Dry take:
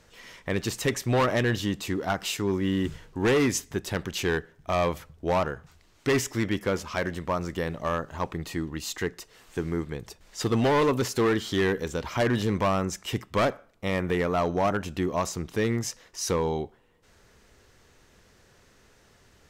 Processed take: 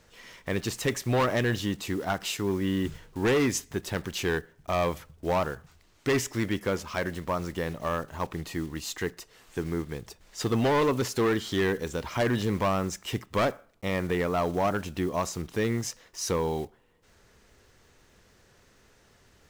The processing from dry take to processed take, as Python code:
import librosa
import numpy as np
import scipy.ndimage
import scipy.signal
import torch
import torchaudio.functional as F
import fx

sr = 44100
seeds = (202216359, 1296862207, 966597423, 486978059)

y = fx.block_float(x, sr, bits=5)
y = y * librosa.db_to_amplitude(-1.5)